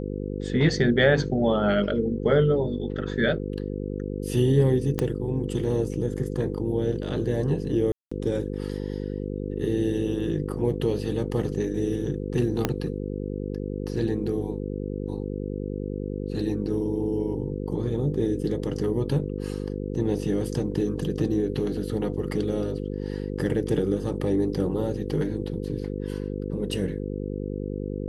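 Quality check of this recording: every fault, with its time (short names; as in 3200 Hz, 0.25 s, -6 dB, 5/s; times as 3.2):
buzz 50 Hz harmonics 10 -31 dBFS
4.99 pop -12 dBFS
7.92–8.12 gap 0.195 s
12.65 pop -8 dBFS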